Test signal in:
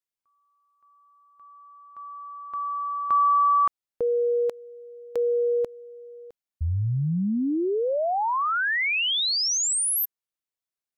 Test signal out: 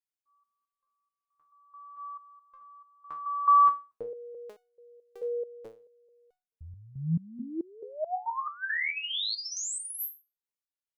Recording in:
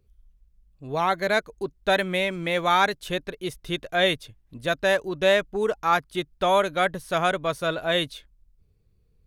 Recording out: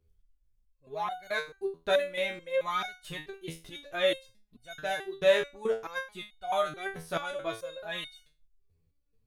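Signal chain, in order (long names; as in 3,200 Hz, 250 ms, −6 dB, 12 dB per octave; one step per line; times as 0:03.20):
step-sequenced resonator 4.6 Hz 82–730 Hz
level +3 dB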